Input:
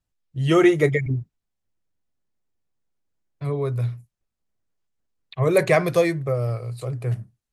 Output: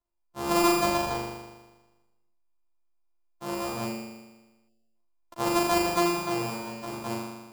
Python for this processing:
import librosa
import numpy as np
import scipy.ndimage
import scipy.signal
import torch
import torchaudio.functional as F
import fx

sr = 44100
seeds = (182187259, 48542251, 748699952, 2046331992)

y = np.r_[np.sort(x[:len(x) // 128 * 128].reshape(-1, 128), axis=1).ravel(), x[len(x) // 128 * 128:]]
y = fx.graphic_eq_10(y, sr, hz=(125, 250, 1000, 2000), db=(-11, -4, 9, -8))
y = fx.room_flutter(y, sr, wall_m=6.9, rt60_s=1.2)
y = fx.spec_box(y, sr, start_s=4.69, length_s=0.26, low_hz=790.0, high_hz=2600.0, gain_db=-20)
y = y * librosa.db_to_amplitude(-8.0)